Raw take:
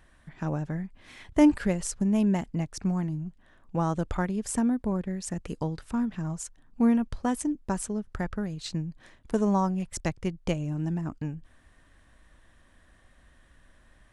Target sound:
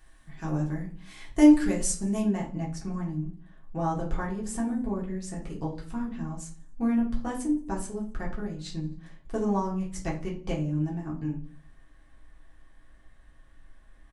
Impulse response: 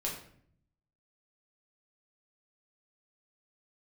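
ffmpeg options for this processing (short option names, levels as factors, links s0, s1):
-filter_complex "[0:a]asetnsamples=n=441:p=0,asendcmd='2.2 highshelf g -2',highshelf=f=3800:g=10,aecho=1:1:87|174|261:0.0668|0.0327|0.016[s0];[1:a]atrim=start_sample=2205,asetrate=83790,aresample=44100[s1];[s0][s1]afir=irnorm=-1:irlink=0"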